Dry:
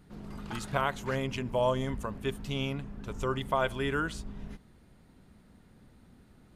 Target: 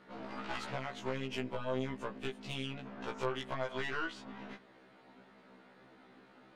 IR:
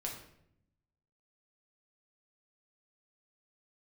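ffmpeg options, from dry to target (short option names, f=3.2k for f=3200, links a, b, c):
-filter_complex "[0:a]highpass=410,lowpass=3.2k,alimiter=level_in=0.5dB:limit=-24dB:level=0:latency=1:release=19,volume=-0.5dB,asettb=1/sr,asplit=3[a][b][c];[a]atrim=end=0.714[d];[b]atrim=start=0.71:end=2.86,asetpts=PTS-STARTPTS,afade=t=in:d=0.004:c=qsin,afade=t=out:st=2.146:d=0.004:c=qsin,equalizer=f=1.2k:t=o:w=2.6:g=-9[e];[c]atrim=start=2.856[f];[d][e]acrossfade=d=0.004:c1=hsin:c2=qsin[g];[g][f]acrossfade=d=0.004:c1=qsin:c2=hsin,acompressor=threshold=-43dB:ratio=5,aeval=exprs='(tanh(112*val(0)+0.75)-tanh(0.75))/112':c=same,afftfilt=real='re*1.73*eq(mod(b,3),0)':imag='im*1.73*eq(mod(b,3),0)':win_size=2048:overlap=0.75,volume=14.5dB"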